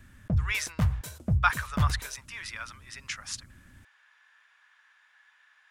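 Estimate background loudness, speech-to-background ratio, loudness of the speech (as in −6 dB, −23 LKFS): −30.5 LKFS, −2.5 dB, −33.0 LKFS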